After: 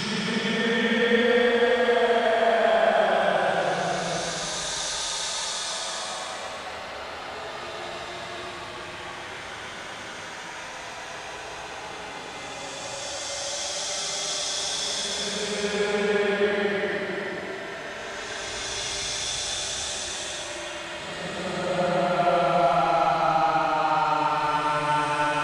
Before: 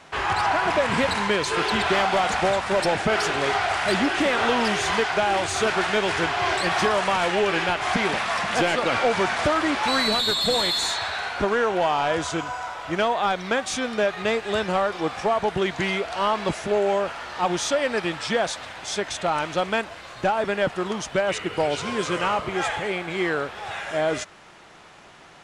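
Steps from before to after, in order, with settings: thinning echo 1.116 s, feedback 79%, high-pass 180 Hz, level -20.5 dB; Paulstretch 23×, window 0.10 s, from 18.29

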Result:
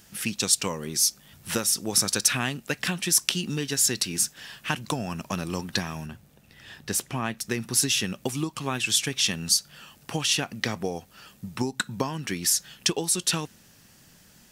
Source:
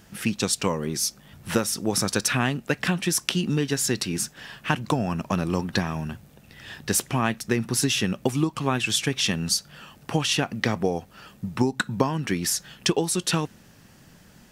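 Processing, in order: high shelf 2700 Hz +11.5 dB, from 6.06 s +3 dB, from 7.39 s +10 dB; gain -6 dB

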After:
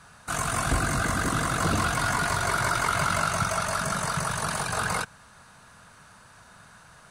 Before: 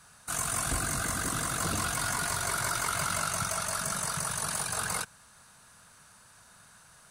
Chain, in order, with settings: LPF 2600 Hz 6 dB/oct; gain +8 dB

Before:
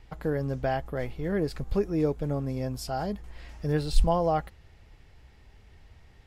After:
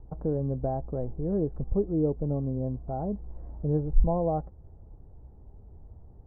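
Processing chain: Bessel low-pass 570 Hz, order 6; in parallel at -1.5 dB: compressor, threshold -41 dBFS, peak gain reduction 25 dB

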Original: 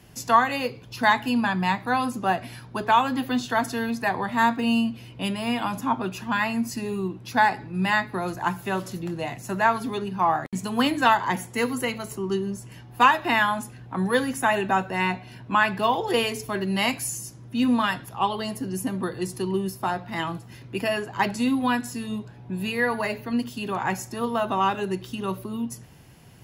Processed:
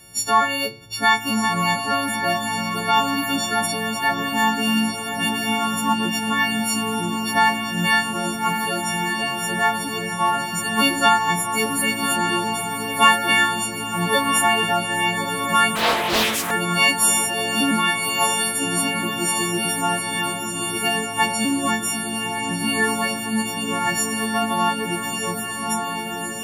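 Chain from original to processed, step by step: frequency quantiser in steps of 4 st; diffused feedback echo 1.255 s, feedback 69%, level -5 dB; 15.75–16.51 Doppler distortion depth 0.66 ms

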